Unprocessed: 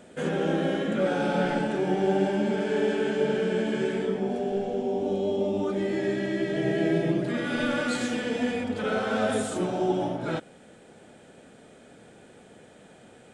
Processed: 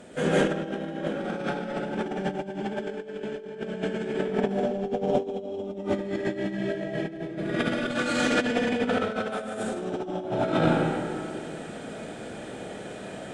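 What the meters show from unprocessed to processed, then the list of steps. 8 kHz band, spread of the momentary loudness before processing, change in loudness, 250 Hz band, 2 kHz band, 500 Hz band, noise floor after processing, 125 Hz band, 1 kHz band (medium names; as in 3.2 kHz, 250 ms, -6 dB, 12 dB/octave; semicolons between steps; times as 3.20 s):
-0.5 dB, 4 LU, -2.0 dB, -1.5 dB, +0.5 dB, -1.5 dB, -39 dBFS, -0.5 dB, +0.5 dB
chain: Chebyshev shaper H 4 -28 dB, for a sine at -12 dBFS; algorithmic reverb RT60 2 s, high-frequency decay 0.7×, pre-delay 110 ms, DRR -10 dB; compressor with a negative ratio -22 dBFS, ratio -0.5; trim -4.5 dB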